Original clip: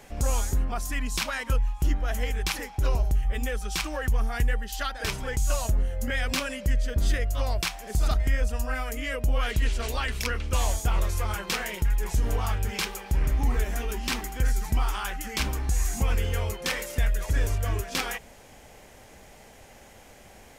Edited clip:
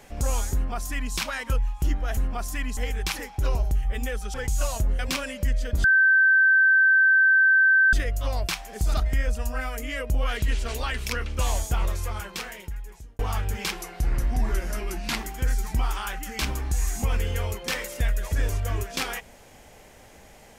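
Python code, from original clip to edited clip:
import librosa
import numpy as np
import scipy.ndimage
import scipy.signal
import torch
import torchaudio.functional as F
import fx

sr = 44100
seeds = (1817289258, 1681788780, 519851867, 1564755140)

y = fx.edit(x, sr, fx.duplicate(start_s=0.54, length_s=0.6, to_s=2.17),
    fx.cut(start_s=3.74, length_s=1.49),
    fx.cut(start_s=5.88, length_s=0.34),
    fx.insert_tone(at_s=7.07, length_s=2.09, hz=1550.0, db=-14.5),
    fx.fade_out_span(start_s=10.88, length_s=1.45),
    fx.speed_span(start_s=12.86, length_s=1.31, speed=0.89), tone=tone)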